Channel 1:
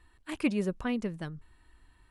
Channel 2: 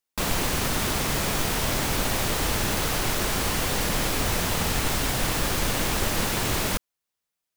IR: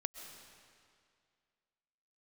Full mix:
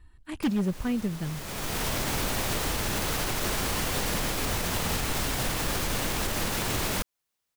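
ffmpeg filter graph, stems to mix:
-filter_complex "[0:a]bass=frequency=250:gain=11,treble=frequency=4000:gain=1,volume=-2dB,asplit=2[link_01][link_02];[1:a]alimiter=limit=-21dB:level=0:latency=1:release=165,adelay=250,volume=2.5dB[link_03];[link_02]apad=whole_len=344792[link_04];[link_03][link_04]sidechaincompress=threshold=-40dB:ratio=16:attack=10:release=554[link_05];[link_01][link_05]amix=inputs=2:normalize=0,aeval=exprs='0.106*(abs(mod(val(0)/0.106+3,4)-2)-1)':channel_layout=same"

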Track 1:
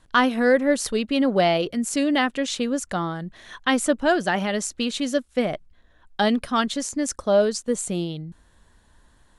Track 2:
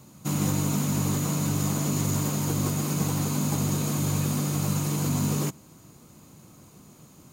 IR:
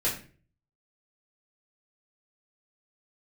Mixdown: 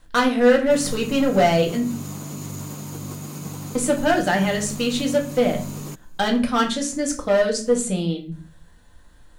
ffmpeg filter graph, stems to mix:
-filter_complex "[0:a]asoftclip=type=hard:threshold=-17dB,volume=-2dB,asplit=3[link_01][link_02][link_03];[link_01]atrim=end=1.83,asetpts=PTS-STARTPTS,afade=type=out:start_time=1.826:duration=0.004:curve=hsin[link_04];[link_02]atrim=start=1.83:end=3.75,asetpts=PTS-STARTPTS,volume=0[link_05];[link_03]atrim=start=3.75,asetpts=PTS-STARTPTS,afade=type=in:duration=0.004:curve=hsin[link_06];[link_04][link_05][link_06]concat=n=3:v=0:a=1,asplit=3[link_07][link_08][link_09];[link_08]volume=-6.5dB[link_10];[1:a]adelay=450,volume=-6.5dB[link_11];[link_09]apad=whole_len=342874[link_12];[link_11][link_12]sidechaincompress=threshold=-25dB:ratio=8:attack=16:release=359[link_13];[2:a]atrim=start_sample=2205[link_14];[link_10][link_14]afir=irnorm=-1:irlink=0[link_15];[link_07][link_13][link_15]amix=inputs=3:normalize=0,acrusher=bits=11:mix=0:aa=0.000001"

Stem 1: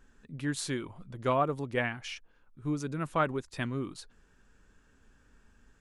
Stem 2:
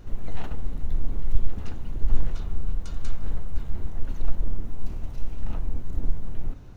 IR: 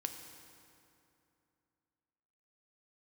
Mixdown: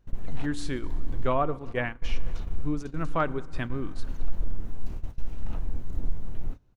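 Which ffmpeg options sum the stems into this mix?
-filter_complex "[0:a]asoftclip=type=hard:threshold=-16dB,aemphasis=mode=reproduction:type=50kf,volume=-1.5dB,asplit=3[link_01][link_02][link_03];[link_02]volume=-6dB[link_04];[1:a]acontrast=69,volume=-8.5dB[link_05];[link_03]apad=whole_len=302552[link_06];[link_05][link_06]sidechaincompress=threshold=-35dB:ratio=8:attack=16:release=690[link_07];[2:a]atrim=start_sample=2205[link_08];[link_04][link_08]afir=irnorm=-1:irlink=0[link_09];[link_01][link_07][link_09]amix=inputs=3:normalize=0,agate=range=-18dB:threshold=-29dB:ratio=16:detection=peak"

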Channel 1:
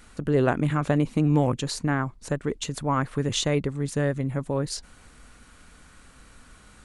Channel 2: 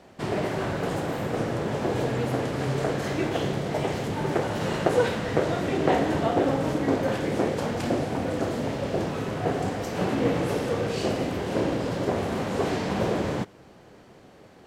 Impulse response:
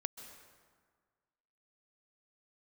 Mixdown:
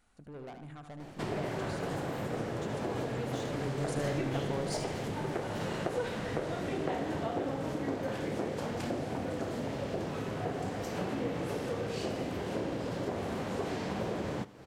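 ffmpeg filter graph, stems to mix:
-filter_complex "[0:a]equalizer=frequency=740:width=3.2:gain=9,asoftclip=type=tanh:threshold=-22.5dB,volume=-7.5dB,afade=type=in:start_time=3.47:duration=0.33:silence=0.237137,asplit=2[link_01][link_02];[link_02]volume=-7.5dB[link_03];[1:a]acompressor=threshold=-37dB:ratio=2.5,adelay=1000,volume=0.5dB,asplit=2[link_04][link_05];[link_05]volume=-20dB[link_06];[link_03][link_06]amix=inputs=2:normalize=0,aecho=0:1:75|150|225|300|375|450:1|0.44|0.194|0.0852|0.0375|0.0165[link_07];[link_01][link_04][link_07]amix=inputs=3:normalize=0"

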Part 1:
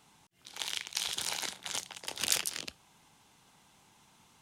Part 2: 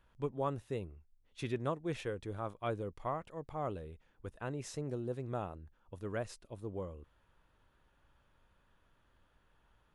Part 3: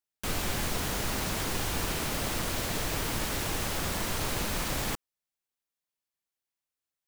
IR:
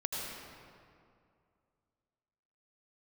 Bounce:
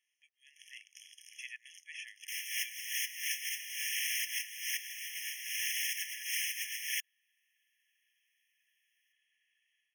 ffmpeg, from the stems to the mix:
-filter_complex "[0:a]volume=-17.5dB[link_01];[1:a]volume=-5.5dB,asplit=2[link_02][link_03];[2:a]adelay=2050,volume=0dB[link_04];[link_03]apad=whole_len=402339[link_05];[link_04][link_05]sidechaincompress=threshold=-55dB:ratio=8:attack=9.9:release=141[link_06];[link_02][link_06]amix=inputs=2:normalize=0,dynaudnorm=framelen=350:gausssize=3:maxgain=10dB,alimiter=limit=-17dB:level=0:latency=1:release=388,volume=0dB[link_07];[link_01][link_07]amix=inputs=2:normalize=0,afftfilt=real='re*eq(mod(floor(b*sr/1024/1700),2),1)':imag='im*eq(mod(floor(b*sr/1024/1700),2),1)':win_size=1024:overlap=0.75"

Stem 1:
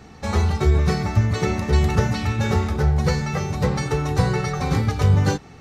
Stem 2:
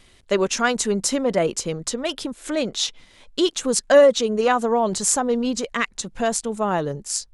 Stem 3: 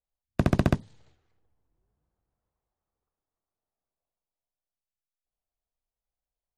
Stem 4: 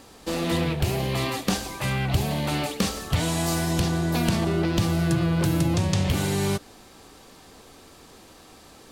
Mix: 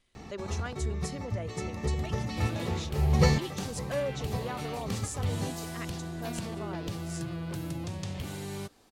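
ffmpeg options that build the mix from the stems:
ffmpeg -i stem1.wav -i stem2.wav -i stem3.wav -i stem4.wav -filter_complex "[0:a]bandreject=frequency=1500:width=6.5,adelay=150,volume=-1dB[link_01];[1:a]volume=-19.5dB,asplit=2[link_02][link_03];[2:a]alimiter=limit=-18.5dB:level=0:latency=1,volume=-18dB[link_04];[3:a]adelay=2100,volume=-13.5dB[link_05];[link_03]apad=whole_len=253722[link_06];[link_01][link_06]sidechaincompress=threshold=-55dB:ratio=4:attack=5.6:release=297[link_07];[link_07][link_02][link_04][link_05]amix=inputs=4:normalize=0" out.wav

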